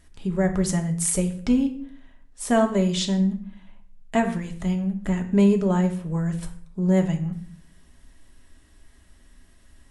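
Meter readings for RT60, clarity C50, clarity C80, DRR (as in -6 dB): 0.60 s, 11.5 dB, 15.5 dB, 4.0 dB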